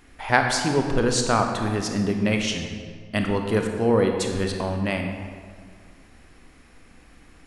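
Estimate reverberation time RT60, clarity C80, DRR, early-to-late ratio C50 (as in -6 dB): 1.9 s, 6.0 dB, 3.5 dB, 4.5 dB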